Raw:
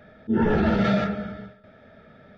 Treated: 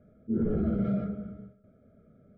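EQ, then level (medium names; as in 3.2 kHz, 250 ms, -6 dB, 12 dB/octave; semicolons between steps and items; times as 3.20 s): boxcar filter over 49 samples; -5.0 dB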